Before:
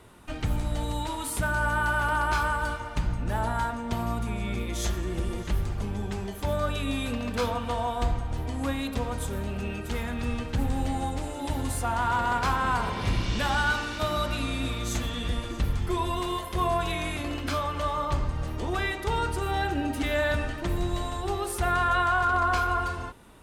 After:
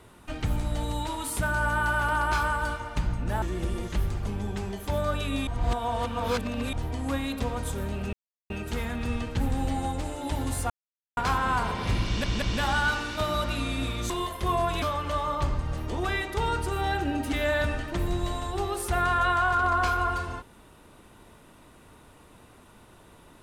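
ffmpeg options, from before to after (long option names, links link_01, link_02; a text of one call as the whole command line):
ffmpeg -i in.wav -filter_complex "[0:a]asplit=11[link_01][link_02][link_03][link_04][link_05][link_06][link_07][link_08][link_09][link_10][link_11];[link_01]atrim=end=3.422[link_12];[link_02]atrim=start=4.968:end=7.022[link_13];[link_03]atrim=start=7.018:end=8.282,asetpts=PTS-STARTPTS,areverse[link_14];[link_04]atrim=start=8.278:end=9.68,asetpts=PTS-STARTPTS,afade=type=out:start_time=1.398:duration=0.004:curve=hsin,apad=pad_dur=0.37[link_15];[link_05]atrim=start=9.68:end=11.88,asetpts=PTS-STARTPTS,afade=type=in:duration=0.004:curve=hsin,afade=type=out:start_time=2.196:duration=0.004:curve=hsin[link_16];[link_06]atrim=start=11.88:end=12.35,asetpts=PTS-STARTPTS,volume=0[link_17];[link_07]atrim=start=12.35:end=13.422,asetpts=PTS-STARTPTS,afade=type=in:duration=0.004:curve=hsin[link_18];[link_08]atrim=start=13.238:end=13.422[link_19];[link_09]atrim=start=13.238:end=14.922[link_20];[link_10]atrim=start=16.218:end=16.942[link_21];[link_11]atrim=start=17.518[link_22];[link_12][link_13]acrossfade=duration=0.004:curve1=hsin:curve2=hsin[link_23];[link_23][link_14]acrossfade=duration=0.004:curve1=hsin:curve2=hsin[link_24];[link_15][link_16][link_17][link_18]concat=n=4:v=0:a=1[link_25];[link_24][link_25]acrossfade=duration=0.004:curve1=hsin:curve2=hsin[link_26];[link_26][link_19]acrossfade=duration=0.004:curve1=hsin:curve2=hsin[link_27];[link_27][link_20]acrossfade=duration=0.004:curve1=hsin:curve2=hsin[link_28];[link_28][link_21]acrossfade=duration=0.004:curve1=hsin:curve2=hsin[link_29];[link_29][link_22]acrossfade=duration=0.004:curve1=hsin:curve2=hsin" out.wav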